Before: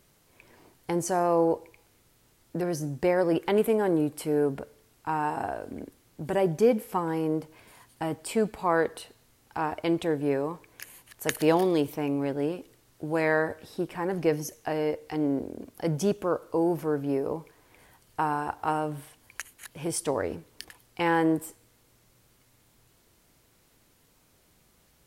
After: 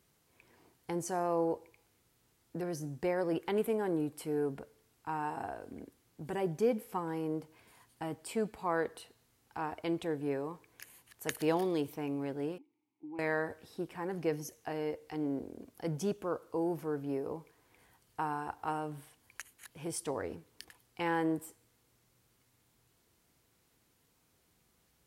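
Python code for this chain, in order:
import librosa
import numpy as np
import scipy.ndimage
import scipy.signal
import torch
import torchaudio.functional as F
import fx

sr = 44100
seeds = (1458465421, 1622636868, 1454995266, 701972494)

y = scipy.signal.sosfilt(scipy.signal.butter(2, 43.0, 'highpass', fs=sr, output='sos'), x)
y = fx.notch(y, sr, hz=590.0, q=12.0)
y = fx.vowel_filter(y, sr, vowel='u', at=(12.58, 13.19))
y = y * librosa.db_to_amplitude(-8.0)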